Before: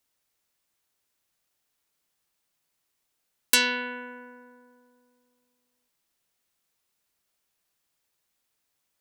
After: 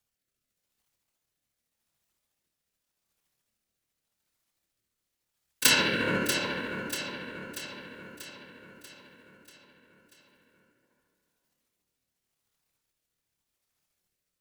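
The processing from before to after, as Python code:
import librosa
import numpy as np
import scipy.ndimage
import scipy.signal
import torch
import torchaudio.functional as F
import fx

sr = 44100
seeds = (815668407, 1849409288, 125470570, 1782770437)

p1 = fx.law_mismatch(x, sr, coded='A')
p2 = fx.low_shelf(p1, sr, hz=120.0, db=10.0)
p3 = fx.over_compress(p2, sr, threshold_db=-34.0, ratio=-1.0)
p4 = p2 + F.gain(torch.from_numpy(p3), 2.5).numpy()
p5 = fx.whisperise(p4, sr, seeds[0])
p6 = fx.stretch_grains(p5, sr, factor=1.6, grain_ms=145.0)
p7 = fx.rotary(p6, sr, hz=0.85)
y = p7 + fx.echo_feedback(p7, sr, ms=638, feedback_pct=55, wet_db=-8.5, dry=0)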